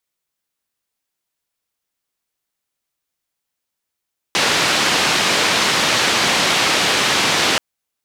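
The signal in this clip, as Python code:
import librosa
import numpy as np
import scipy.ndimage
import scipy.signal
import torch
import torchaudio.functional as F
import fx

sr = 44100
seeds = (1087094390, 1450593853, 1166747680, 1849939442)

y = fx.band_noise(sr, seeds[0], length_s=3.23, low_hz=140.0, high_hz=4200.0, level_db=-16.5)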